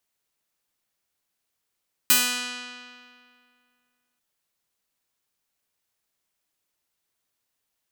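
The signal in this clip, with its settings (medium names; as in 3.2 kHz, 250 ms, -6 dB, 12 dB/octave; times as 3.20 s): plucked string B3, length 2.09 s, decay 2.21 s, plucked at 0.45, bright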